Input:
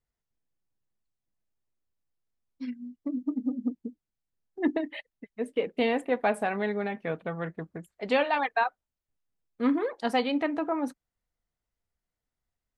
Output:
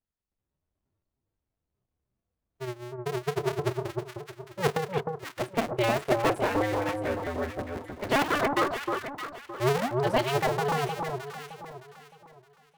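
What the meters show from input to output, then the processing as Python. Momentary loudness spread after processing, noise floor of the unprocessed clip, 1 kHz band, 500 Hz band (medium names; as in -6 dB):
14 LU, under -85 dBFS, +3.0 dB, +2.5 dB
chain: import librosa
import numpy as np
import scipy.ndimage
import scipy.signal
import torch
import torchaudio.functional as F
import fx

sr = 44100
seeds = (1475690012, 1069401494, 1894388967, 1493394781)

y = fx.cycle_switch(x, sr, every=2, mode='inverted')
y = fx.noise_reduce_blind(y, sr, reduce_db=7)
y = fx.high_shelf(y, sr, hz=5000.0, db=-5.0)
y = fx.echo_alternate(y, sr, ms=308, hz=1200.0, feedback_pct=55, wet_db=-3)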